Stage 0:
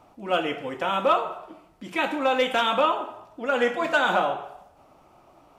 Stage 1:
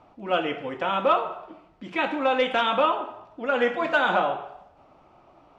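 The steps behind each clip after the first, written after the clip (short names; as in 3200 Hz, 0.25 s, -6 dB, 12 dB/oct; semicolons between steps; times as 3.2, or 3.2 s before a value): LPF 4000 Hz 12 dB/oct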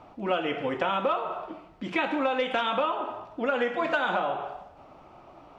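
compressor 6:1, threshold -28 dBFS, peak gain reduction 11.5 dB; gain +4.5 dB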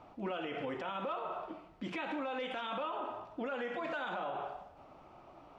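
limiter -24.5 dBFS, peak gain reduction 11.5 dB; gain -5.5 dB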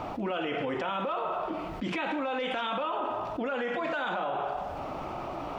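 fast leveller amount 70%; gain +5 dB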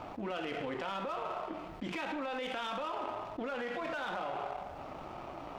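power-law curve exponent 1.4; gain -3.5 dB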